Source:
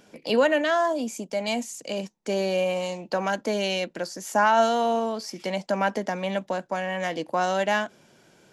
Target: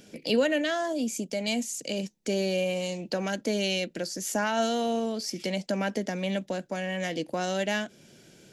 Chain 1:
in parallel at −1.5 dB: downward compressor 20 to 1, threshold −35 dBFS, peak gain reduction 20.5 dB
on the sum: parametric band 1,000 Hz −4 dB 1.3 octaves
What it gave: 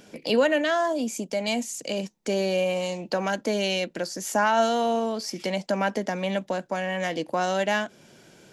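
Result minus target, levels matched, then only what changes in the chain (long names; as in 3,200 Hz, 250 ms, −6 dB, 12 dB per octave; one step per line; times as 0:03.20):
1,000 Hz band +4.0 dB
change: parametric band 1,000 Hz −14 dB 1.3 octaves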